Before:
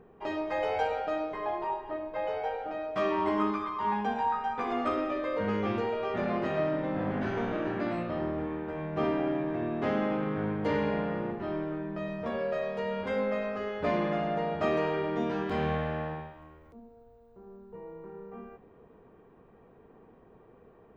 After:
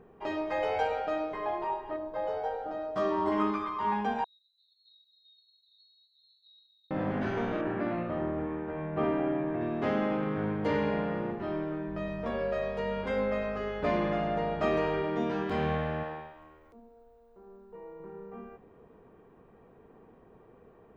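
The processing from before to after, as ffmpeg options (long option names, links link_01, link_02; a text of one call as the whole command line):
ffmpeg -i in.wav -filter_complex "[0:a]asettb=1/sr,asplit=3[link_01][link_02][link_03];[link_01]atrim=end=1.964[link_04];[link_02]atrim=start=1.96:end=3.32,asetpts=PTS-STARTPTS,afade=type=in:duration=0.004:curve=qsin,afade=type=out:start_time=1.356:duration=0.004:curve=qsin,equalizer=frequency=2400:width=2.2:gain=-12.5[link_05];[link_03]atrim=start=3.316[link_06];[link_04][link_05]acrossfade=duration=0.004:curve1=hsin:curve2=qsin[link_07];[link_07][link_06]acrossfade=duration=0.004:curve1=qsin:curve2=hsin,asettb=1/sr,asplit=3[link_08][link_09][link_10];[link_08]atrim=end=4.244[link_11];[link_09]atrim=start=4.24:end=6.91,asetpts=PTS-STARTPTS,afade=type=in:duration=0.004:curve=qsin,afade=type=out:start_time=2.666:duration=0.004:curve=qsin,asuperpass=centerf=4000:order=20:qfactor=5.9[link_12];[link_10]atrim=start=6.906[link_13];[link_11][link_12]acrossfade=duration=0.004:curve1=hsin:curve2=qsin[link_14];[link_14][link_13]acrossfade=duration=0.004:curve1=qsin:curve2=hsin,asettb=1/sr,asplit=3[link_15][link_16][link_17];[link_15]atrim=end=7.614[link_18];[link_16]atrim=start=7.61:end=9.61,asetpts=PTS-STARTPTS,afade=type=in:duration=0.004:curve=qsin,afade=type=out:start_time=1.996:duration=0.004:curve=qsin,lowpass=2500[link_19];[link_17]atrim=start=9.606[link_20];[link_18][link_19]acrossfade=duration=0.004:curve1=hsin:curve2=qsin[link_21];[link_21][link_20]acrossfade=duration=0.004:curve1=qsin:curve2=hsin,asettb=1/sr,asplit=3[link_22][link_23][link_24];[link_22]atrim=end=11.884[link_25];[link_23]atrim=start=11.88:end=15.02,asetpts=PTS-STARTPTS,afade=type=in:duration=0.004:curve=qsin,afade=type=out:start_time=3.136:duration=0.004:curve=qsin,aeval=exprs='val(0)+0.00562*(sin(2*PI*50*n/s)+sin(2*PI*2*50*n/s)/2+sin(2*PI*3*50*n/s)/3+sin(2*PI*4*50*n/s)/4+sin(2*PI*5*50*n/s)/5)':channel_layout=same[link_26];[link_24]atrim=start=15.016[link_27];[link_25][link_26]acrossfade=duration=0.004:curve1=hsin:curve2=qsin[link_28];[link_28][link_27]acrossfade=duration=0.004:curve1=qsin:curve2=hsin,asettb=1/sr,asplit=3[link_29][link_30][link_31];[link_29]atrim=end=16.034[link_32];[link_30]atrim=start=16.03:end=18,asetpts=PTS-STARTPTS,afade=type=in:duration=0.004:curve=qsin,afade=type=out:start_time=1.966:duration=0.004:curve=qsin,equalizer=frequency=110:width=0.78:gain=-12.5[link_33];[link_31]atrim=start=17.996[link_34];[link_32][link_33]acrossfade=duration=0.004:curve1=hsin:curve2=qsin[link_35];[link_35][link_34]acrossfade=duration=0.004:curve1=qsin:curve2=hsin" out.wav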